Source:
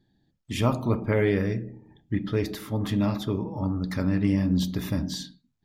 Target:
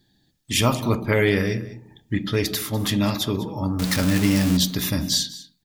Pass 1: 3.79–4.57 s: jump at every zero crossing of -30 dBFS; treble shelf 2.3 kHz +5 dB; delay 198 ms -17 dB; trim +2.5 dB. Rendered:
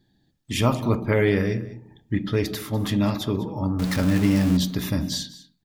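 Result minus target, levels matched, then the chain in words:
4 kHz band -5.5 dB
3.79–4.57 s: jump at every zero crossing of -30 dBFS; treble shelf 2.3 kHz +14.5 dB; delay 198 ms -17 dB; trim +2.5 dB

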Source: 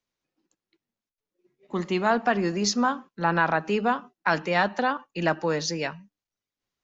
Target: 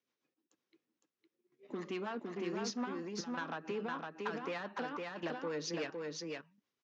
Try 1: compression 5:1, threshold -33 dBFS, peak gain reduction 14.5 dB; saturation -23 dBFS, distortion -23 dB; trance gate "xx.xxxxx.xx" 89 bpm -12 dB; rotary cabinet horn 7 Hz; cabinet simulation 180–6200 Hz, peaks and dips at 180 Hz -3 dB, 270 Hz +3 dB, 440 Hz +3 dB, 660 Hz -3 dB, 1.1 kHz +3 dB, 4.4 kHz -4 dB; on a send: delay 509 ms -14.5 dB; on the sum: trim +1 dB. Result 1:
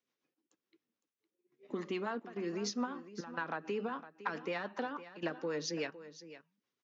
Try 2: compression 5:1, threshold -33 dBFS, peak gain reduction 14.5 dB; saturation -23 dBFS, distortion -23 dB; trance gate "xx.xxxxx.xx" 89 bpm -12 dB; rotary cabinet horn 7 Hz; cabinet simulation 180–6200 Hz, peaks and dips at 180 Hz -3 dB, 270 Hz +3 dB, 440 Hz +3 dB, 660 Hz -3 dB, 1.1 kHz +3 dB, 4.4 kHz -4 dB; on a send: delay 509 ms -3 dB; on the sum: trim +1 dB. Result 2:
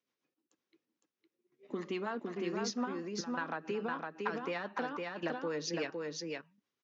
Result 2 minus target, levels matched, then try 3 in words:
saturation: distortion -11 dB
compression 5:1, threshold -33 dBFS, peak gain reduction 14.5 dB; saturation -32 dBFS, distortion -12 dB; trance gate "xx.xxxxx.xx" 89 bpm -12 dB; rotary cabinet horn 7 Hz; cabinet simulation 180–6200 Hz, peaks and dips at 180 Hz -3 dB, 270 Hz +3 dB, 440 Hz +3 dB, 660 Hz -3 dB, 1.1 kHz +3 dB, 4.4 kHz -4 dB; on a send: delay 509 ms -3 dB; on the sum: trim +1 dB

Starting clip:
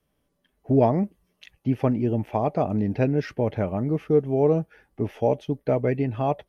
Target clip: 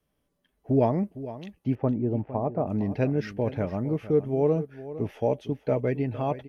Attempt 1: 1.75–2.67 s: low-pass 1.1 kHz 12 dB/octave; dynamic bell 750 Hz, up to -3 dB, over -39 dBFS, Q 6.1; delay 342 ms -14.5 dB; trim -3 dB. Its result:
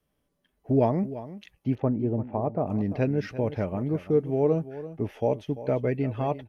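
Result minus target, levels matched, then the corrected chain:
echo 116 ms early
1.75–2.67 s: low-pass 1.1 kHz 12 dB/octave; dynamic bell 750 Hz, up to -3 dB, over -39 dBFS, Q 6.1; delay 458 ms -14.5 dB; trim -3 dB

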